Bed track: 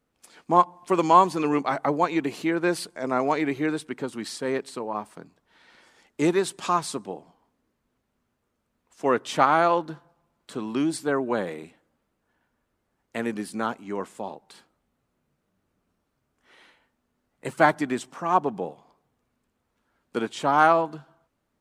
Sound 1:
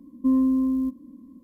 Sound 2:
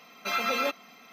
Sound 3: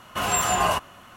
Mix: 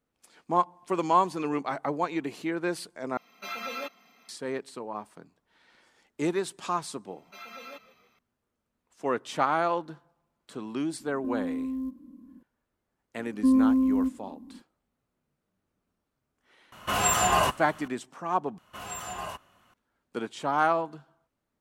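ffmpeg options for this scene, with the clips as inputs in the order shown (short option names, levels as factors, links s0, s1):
-filter_complex "[2:a]asplit=2[s0][s1];[1:a]asplit=2[s2][s3];[3:a]asplit=2[s4][s5];[0:a]volume=0.501[s6];[s1]asplit=5[s7][s8][s9][s10][s11];[s8]adelay=155,afreqshift=-40,volume=0.158[s12];[s9]adelay=310,afreqshift=-80,volume=0.0776[s13];[s10]adelay=465,afreqshift=-120,volume=0.038[s14];[s11]adelay=620,afreqshift=-160,volume=0.0186[s15];[s7][s12][s13][s14][s15]amix=inputs=5:normalize=0[s16];[s2]acompressor=threshold=0.0501:ratio=6:attack=3.2:release=140:knee=1:detection=peak[s17];[s6]asplit=3[s18][s19][s20];[s18]atrim=end=3.174[s21];[s0]atrim=end=1.12,asetpts=PTS-STARTPTS,volume=0.398[s22];[s19]atrim=start=4.286:end=18.584[s23];[s5]atrim=end=1.16,asetpts=PTS-STARTPTS,volume=0.178[s24];[s20]atrim=start=19.736[s25];[s16]atrim=end=1.12,asetpts=PTS-STARTPTS,volume=0.15,afade=t=in:d=0.004:c=hsin,afade=t=out:st=1.116:d=0.004:c=hsin,adelay=7070[s26];[s17]atrim=end=1.43,asetpts=PTS-STARTPTS,volume=0.631,afade=t=in:d=0.004:c=hsin,afade=t=out:st=1.426:d=0.004:c=hsin,adelay=11000[s27];[s3]atrim=end=1.43,asetpts=PTS-STARTPTS,volume=0.944,afade=t=in:d=0.004:c=hsin,afade=t=out:st=1.426:d=0.004:c=hsin,adelay=13190[s28];[s4]atrim=end=1.16,asetpts=PTS-STARTPTS,volume=0.891,afade=t=in:d=0.004:c=hsin,afade=t=out:st=1.156:d=0.004:c=hsin,adelay=16720[s29];[s21][s22]acrossfade=d=0.004:c1=hsin:c2=hsin[s30];[s30][s23]acrossfade=d=0.004:c1=hsin:c2=hsin[s31];[s31][s24]acrossfade=d=0.004:c1=hsin:c2=hsin[s32];[s32][s25]acrossfade=d=0.004:c1=hsin:c2=hsin[s33];[s33][s26][s27][s28][s29]amix=inputs=5:normalize=0"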